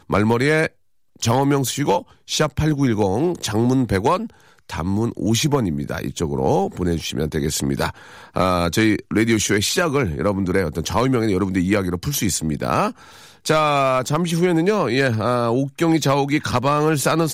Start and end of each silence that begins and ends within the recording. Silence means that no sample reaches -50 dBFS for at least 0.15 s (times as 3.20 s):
0.73–1.16 s